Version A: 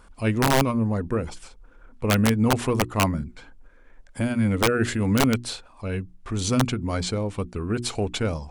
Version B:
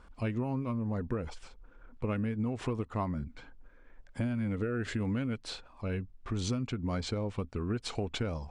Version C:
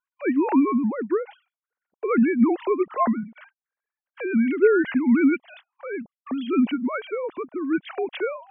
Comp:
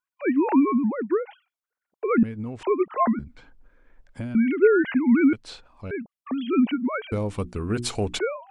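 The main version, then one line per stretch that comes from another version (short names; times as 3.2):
C
2.23–2.63 from B
3.19–4.35 from B
5.33–5.91 from B
7.12–8.19 from A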